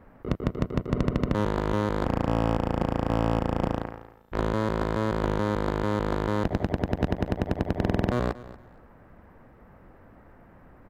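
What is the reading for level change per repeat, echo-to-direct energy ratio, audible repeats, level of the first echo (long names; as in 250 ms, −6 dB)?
−13.5 dB, −17.5 dB, 2, −17.5 dB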